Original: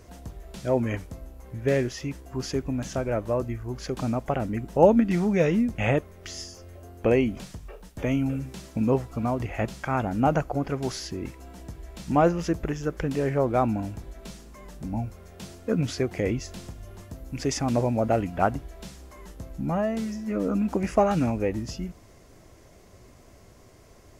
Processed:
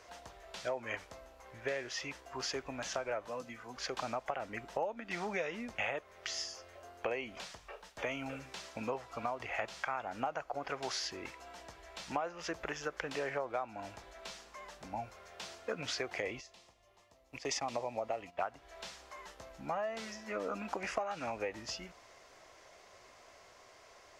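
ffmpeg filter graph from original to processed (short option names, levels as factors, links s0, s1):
-filter_complex "[0:a]asettb=1/sr,asplit=3[s0][s1][s2];[s0]atrim=end=3.274[s3];[s1]atrim=start=3.27:end=3.77,asetpts=PTS-STARTPTS,afade=t=in:d=0.004:c=qsin,afade=t=out:st=0.496:d=0.004:c=qsin,lowshelf=f=100:t=q:w=3:g=-11.5,aecho=1:1:4:0.62,atrim=end_sample=22050,acrossover=split=210|3000[s4][s5][s6];[s5]acompressor=threshold=0.0126:ratio=3:attack=3.2:release=140:knee=2.83:detection=peak[s7];[s4][s7][s6]amix=inputs=3:normalize=0[s8];[s2]atrim=start=3.766[s9];[s3][s8]acrossfade=d=0.004:c1=hsin:c2=qsin[s10];[s10][s9]acrossfade=d=0.004:c1=qsin:c2=hsin,asettb=1/sr,asplit=3[s11][s12][s13];[s11]atrim=end=16.224[s14];[s12]atrim=start=16.22:end=18.41,asetpts=PTS-STARTPTS,afade=t=in:d=0.004:c=qsin,afade=t=out:st=2.186:d=0.004:c=qsin,agate=range=0.224:threshold=0.02:ratio=16:release=100:detection=peak,equalizer=f=1500:t=o:w=0.2:g=-14.5[s15];[s13]atrim=start=18.406[s16];[s14][s15]acrossfade=d=0.004:c1=hsin:c2=qsin[s17];[s17][s16]acrossfade=d=0.004:c1=qsin:c2=hsin,acrossover=split=560 6500:gain=0.0708 1 0.158[s18][s19][s20];[s18][s19][s20]amix=inputs=3:normalize=0,acompressor=threshold=0.0178:ratio=10,volume=1.26"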